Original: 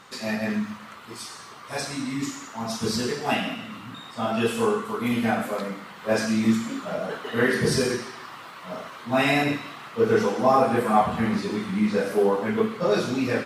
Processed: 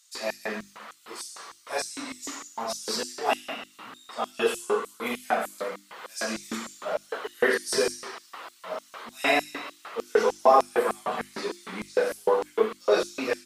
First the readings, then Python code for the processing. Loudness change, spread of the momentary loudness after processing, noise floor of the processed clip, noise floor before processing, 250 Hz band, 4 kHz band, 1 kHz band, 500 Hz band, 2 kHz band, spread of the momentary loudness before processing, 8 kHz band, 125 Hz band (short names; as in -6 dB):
-3.5 dB, 16 LU, -57 dBFS, -43 dBFS, -12.5 dB, -1.5 dB, -1.5 dB, -1.5 dB, -2.0 dB, 16 LU, +0.5 dB, under -20 dB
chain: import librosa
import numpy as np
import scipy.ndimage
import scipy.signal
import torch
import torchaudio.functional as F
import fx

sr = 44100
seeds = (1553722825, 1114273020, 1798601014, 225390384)

y = fx.filter_lfo_highpass(x, sr, shape='square', hz=3.3, low_hz=450.0, high_hz=6800.0, q=1.2)
y = fx.hum_notches(y, sr, base_hz=50, count=7)